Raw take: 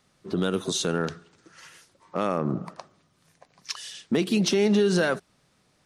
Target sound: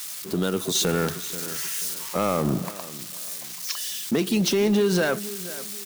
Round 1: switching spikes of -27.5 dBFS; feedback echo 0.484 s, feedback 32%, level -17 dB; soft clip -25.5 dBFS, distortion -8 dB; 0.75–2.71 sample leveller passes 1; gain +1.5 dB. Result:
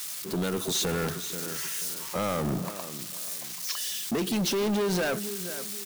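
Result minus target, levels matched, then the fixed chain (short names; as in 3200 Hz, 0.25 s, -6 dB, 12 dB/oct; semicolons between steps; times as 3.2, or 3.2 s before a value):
soft clip: distortion +15 dB
switching spikes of -27.5 dBFS; feedback echo 0.484 s, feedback 32%, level -17 dB; soft clip -13.5 dBFS, distortion -23 dB; 0.75–2.71 sample leveller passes 1; gain +1.5 dB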